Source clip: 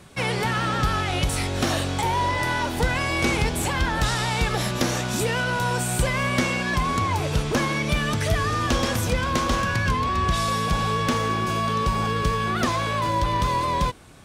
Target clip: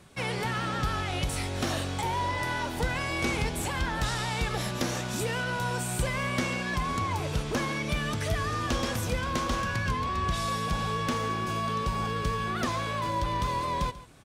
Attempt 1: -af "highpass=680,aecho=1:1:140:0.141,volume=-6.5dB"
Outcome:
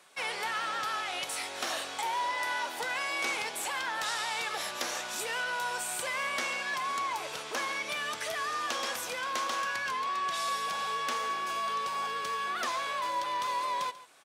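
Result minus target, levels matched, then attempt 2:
500 Hz band -4.0 dB
-af "aecho=1:1:140:0.141,volume=-6.5dB"

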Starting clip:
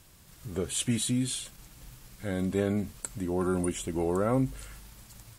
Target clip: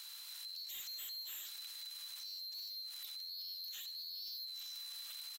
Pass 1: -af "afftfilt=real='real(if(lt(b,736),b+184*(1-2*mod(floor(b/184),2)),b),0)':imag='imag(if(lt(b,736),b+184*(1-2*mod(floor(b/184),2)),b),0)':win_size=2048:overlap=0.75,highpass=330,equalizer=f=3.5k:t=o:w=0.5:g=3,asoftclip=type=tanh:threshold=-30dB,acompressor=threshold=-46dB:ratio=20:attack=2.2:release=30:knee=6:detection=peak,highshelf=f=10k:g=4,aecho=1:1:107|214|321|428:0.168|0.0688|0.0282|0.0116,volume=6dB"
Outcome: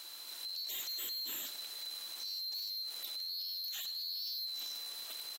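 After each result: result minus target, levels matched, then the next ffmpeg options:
250 Hz band +14.5 dB; echo 36 ms late; compressor: peak gain reduction -5.5 dB
-af "afftfilt=real='real(if(lt(b,736),b+184*(1-2*mod(floor(b/184),2)),b),0)':imag='imag(if(lt(b,736),b+184*(1-2*mod(floor(b/184),2)),b),0)':win_size=2048:overlap=0.75,highpass=1.3k,equalizer=f=3.5k:t=o:w=0.5:g=3,asoftclip=type=tanh:threshold=-30dB,acompressor=threshold=-46dB:ratio=20:attack=2.2:release=30:knee=6:detection=peak,highshelf=f=10k:g=4,aecho=1:1:107|214|321|428:0.168|0.0688|0.0282|0.0116,volume=6dB"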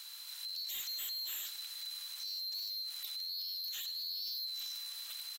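echo 36 ms late; compressor: peak gain reduction -5.5 dB
-af "afftfilt=real='real(if(lt(b,736),b+184*(1-2*mod(floor(b/184),2)),b),0)':imag='imag(if(lt(b,736),b+184*(1-2*mod(floor(b/184),2)),b),0)':win_size=2048:overlap=0.75,highpass=1.3k,equalizer=f=3.5k:t=o:w=0.5:g=3,asoftclip=type=tanh:threshold=-30dB,acompressor=threshold=-46dB:ratio=20:attack=2.2:release=30:knee=6:detection=peak,highshelf=f=10k:g=4,aecho=1:1:71|142|213|284:0.168|0.0688|0.0282|0.0116,volume=6dB"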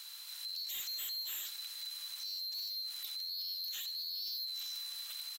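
compressor: peak gain reduction -5.5 dB
-af "afftfilt=real='real(if(lt(b,736),b+184*(1-2*mod(floor(b/184),2)),b),0)':imag='imag(if(lt(b,736),b+184*(1-2*mod(floor(b/184),2)),b),0)':win_size=2048:overlap=0.75,highpass=1.3k,equalizer=f=3.5k:t=o:w=0.5:g=3,asoftclip=type=tanh:threshold=-30dB,acompressor=threshold=-52dB:ratio=20:attack=2.2:release=30:knee=6:detection=peak,highshelf=f=10k:g=4,aecho=1:1:71|142|213|284:0.168|0.0688|0.0282|0.0116,volume=6dB"

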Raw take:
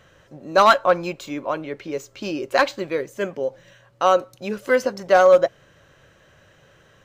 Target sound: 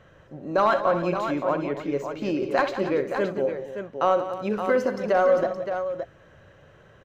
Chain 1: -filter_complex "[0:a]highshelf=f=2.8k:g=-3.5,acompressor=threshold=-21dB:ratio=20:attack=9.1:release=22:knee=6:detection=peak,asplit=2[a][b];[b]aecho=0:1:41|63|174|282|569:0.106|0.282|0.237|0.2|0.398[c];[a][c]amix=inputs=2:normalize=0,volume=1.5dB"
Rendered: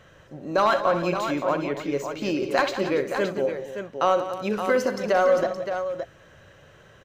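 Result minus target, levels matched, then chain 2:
4000 Hz band +5.5 dB
-filter_complex "[0:a]highshelf=f=2.8k:g=-14,acompressor=threshold=-21dB:ratio=20:attack=9.1:release=22:knee=6:detection=peak,asplit=2[a][b];[b]aecho=0:1:41|63|174|282|569:0.106|0.282|0.237|0.2|0.398[c];[a][c]amix=inputs=2:normalize=0,volume=1.5dB"

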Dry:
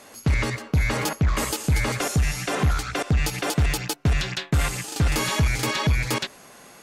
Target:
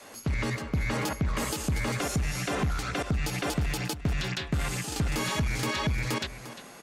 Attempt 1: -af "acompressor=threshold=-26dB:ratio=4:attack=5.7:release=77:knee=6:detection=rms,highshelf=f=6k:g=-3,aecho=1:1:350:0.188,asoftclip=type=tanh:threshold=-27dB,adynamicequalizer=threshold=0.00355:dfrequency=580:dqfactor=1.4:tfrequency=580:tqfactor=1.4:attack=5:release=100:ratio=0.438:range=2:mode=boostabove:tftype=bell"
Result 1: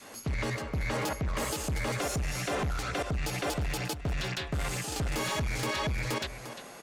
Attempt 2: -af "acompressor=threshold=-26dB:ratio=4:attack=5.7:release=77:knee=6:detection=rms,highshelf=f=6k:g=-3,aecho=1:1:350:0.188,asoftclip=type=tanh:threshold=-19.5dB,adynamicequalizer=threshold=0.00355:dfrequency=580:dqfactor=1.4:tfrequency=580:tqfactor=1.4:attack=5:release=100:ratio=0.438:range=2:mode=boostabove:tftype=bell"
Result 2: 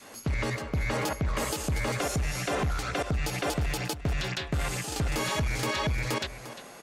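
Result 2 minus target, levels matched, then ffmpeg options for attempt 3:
500 Hz band +2.5 dB
-af "acompressor=threshold=-26dB:ratio=4:attack=5.7:release=77:knee=6:detection=rms,highshelf=f=6k:g=-3,aecho=1:1:350:0.188,asoftclip=type=tanh:threshold=-19.5dB,adynamicequalizer=threshold=0.00355:dfrequency=210:dqfactor=1.4:tfrequency=210:tqfactor=1.4:attack=5:release=100:ratio=0.438:range=2:mode=boostabove:tftype=bell"

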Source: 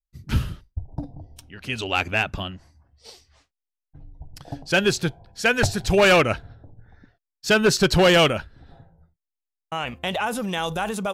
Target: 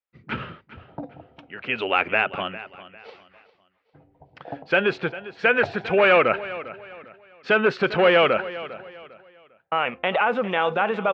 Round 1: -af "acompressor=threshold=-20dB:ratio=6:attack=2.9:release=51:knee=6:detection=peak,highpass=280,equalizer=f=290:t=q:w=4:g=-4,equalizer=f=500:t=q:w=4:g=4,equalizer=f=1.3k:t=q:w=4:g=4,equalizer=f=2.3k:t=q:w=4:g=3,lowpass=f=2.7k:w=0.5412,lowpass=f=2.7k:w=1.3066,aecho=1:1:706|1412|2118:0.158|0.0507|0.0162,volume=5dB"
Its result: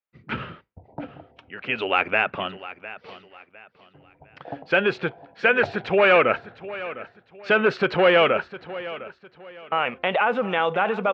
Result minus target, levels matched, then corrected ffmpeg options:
echo 0.305 s late
-af "acompressor=threshold=-20dB:ratio=6:attack=2.9:release=51:knee=6:detection=peak,highpass=280,equalizer=f=290:t=q:w=4:g=-4,equalizer=f=500:t=q:w=4:g=4,equalizer=f=1.3k:t=q:w=4:g=4,equalizer=f=2.3k:t=q:w=4:g=3,lowpass=f=2.7k:w=0.5412,lowpass=f=2.7k:w=1.3066,aecho=1:1:401|802|1203:0.158|0.0507|0.0162,volume=5dB"

